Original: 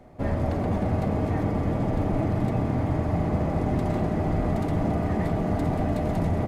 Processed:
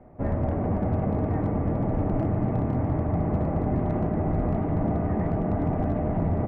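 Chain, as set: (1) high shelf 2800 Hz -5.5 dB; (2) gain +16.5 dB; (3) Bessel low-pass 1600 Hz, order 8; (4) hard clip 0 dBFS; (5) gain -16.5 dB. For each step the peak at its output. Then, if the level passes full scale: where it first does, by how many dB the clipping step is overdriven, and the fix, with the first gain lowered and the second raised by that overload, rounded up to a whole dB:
-12.5, +4.0, +4.0, 0.0, -16.5 dBFS; step 2, 4.0 dB; step 2 +12.5 dB, step 5 -12.5 dB

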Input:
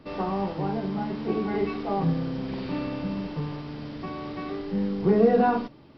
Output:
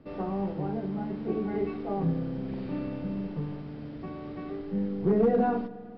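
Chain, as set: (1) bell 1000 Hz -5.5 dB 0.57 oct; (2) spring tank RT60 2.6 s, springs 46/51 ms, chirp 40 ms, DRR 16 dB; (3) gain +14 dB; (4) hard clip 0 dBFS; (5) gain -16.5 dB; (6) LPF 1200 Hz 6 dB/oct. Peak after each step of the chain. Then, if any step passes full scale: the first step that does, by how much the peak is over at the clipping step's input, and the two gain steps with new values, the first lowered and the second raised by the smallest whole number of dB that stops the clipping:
-8.0, -7.5, +6.5, 0.0, -16.5, -16.5 dBFS; step 3, 6.5 dB; step 3 +7 dB, step 5 -9.5 dB

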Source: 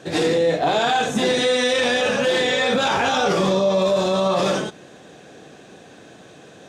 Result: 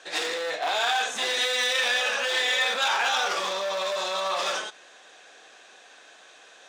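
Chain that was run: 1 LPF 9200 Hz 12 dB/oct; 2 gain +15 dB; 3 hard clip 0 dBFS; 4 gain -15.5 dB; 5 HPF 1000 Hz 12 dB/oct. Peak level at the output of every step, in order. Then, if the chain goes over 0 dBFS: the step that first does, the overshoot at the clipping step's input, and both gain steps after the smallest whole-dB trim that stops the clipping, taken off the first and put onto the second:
-9.0, +6.0, 0.0, -15.5, -12.5 dBFS; step 2, 6.0 dB; step 2 +9 dB, step 4 -9.5 dB

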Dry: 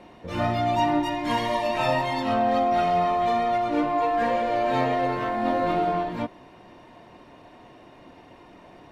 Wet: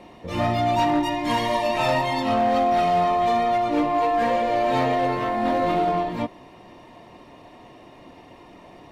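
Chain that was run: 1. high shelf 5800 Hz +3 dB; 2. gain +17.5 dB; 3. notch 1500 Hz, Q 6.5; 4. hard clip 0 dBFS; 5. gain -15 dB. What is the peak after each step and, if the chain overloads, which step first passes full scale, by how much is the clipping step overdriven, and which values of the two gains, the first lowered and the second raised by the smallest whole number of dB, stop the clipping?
-10.5, +7.0, +7.0, 0.0, -15.0 dBFS; step 2, 7.0 dB; step 2 +10.5 dB, step 5 -8 dB

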